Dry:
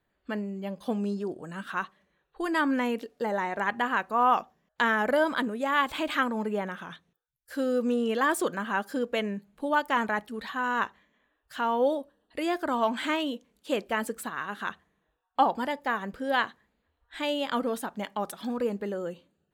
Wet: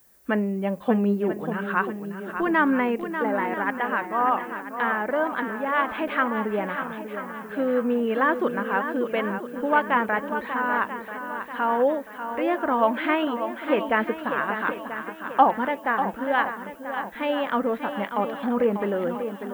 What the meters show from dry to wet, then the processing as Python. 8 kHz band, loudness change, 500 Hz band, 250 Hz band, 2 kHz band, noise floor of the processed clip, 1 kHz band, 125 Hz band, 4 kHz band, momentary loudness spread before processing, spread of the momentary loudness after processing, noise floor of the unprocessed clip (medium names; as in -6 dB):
under -10 dB, +4.0 dB, +5.0 dB, +5.0 dB, +4.0 dB, -40 dBFS, +4.5 dB, +6.5 dB, -3.5 dB, 10 LU, 9 LU, -77 dBFS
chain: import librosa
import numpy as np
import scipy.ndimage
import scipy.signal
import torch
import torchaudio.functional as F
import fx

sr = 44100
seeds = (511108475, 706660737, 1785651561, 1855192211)

p1 = scipy.signal.sosfilt(scipy.signal.butter(4, 2500.0, 'lowpass', fs=sr, output='sos'), x)
p2 = fx.low_shelf(p1, sr, hz=180.0, db=-3.5)
p3 = fx.rider(p2, sr, range_db=10, speed_s=2.0)
p4 = fx.dmg_noise_colour(p3, sr, seeds[0], colour='violet', level_db=-62.0)
p5 = p4 + fx.echo_swing(p4, sr, ms=987, ratio=1.5, feedback_pct=43, wet_db=-9.0, dry=0)
y = p5 * librosa.db_to_amplitude(3.5)